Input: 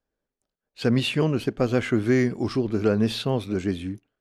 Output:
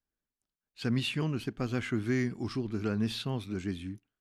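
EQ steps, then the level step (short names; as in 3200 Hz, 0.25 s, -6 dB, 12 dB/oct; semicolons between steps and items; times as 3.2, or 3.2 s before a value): bell 530 Hz -10 dB 1 oct; -6.5 dB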